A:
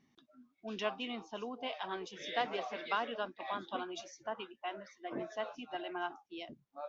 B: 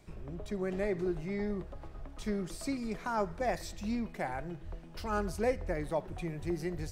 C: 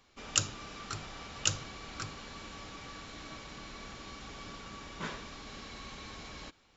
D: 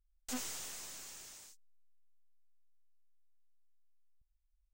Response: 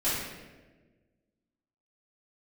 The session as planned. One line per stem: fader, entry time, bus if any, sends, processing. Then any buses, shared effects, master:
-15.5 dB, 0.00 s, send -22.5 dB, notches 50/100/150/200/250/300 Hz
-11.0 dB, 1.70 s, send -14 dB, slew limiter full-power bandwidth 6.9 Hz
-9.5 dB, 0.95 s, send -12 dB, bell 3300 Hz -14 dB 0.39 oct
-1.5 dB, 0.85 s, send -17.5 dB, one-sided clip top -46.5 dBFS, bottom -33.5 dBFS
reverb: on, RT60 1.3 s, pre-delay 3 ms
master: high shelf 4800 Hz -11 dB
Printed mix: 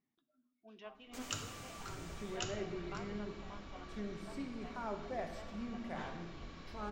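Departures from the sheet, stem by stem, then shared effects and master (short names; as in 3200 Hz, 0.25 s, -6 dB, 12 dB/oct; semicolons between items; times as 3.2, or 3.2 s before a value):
stem B: missing slew limiter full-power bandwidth 6.9 Hz; stem C: missing bell 3300 Hz -14 dB 0.39 oct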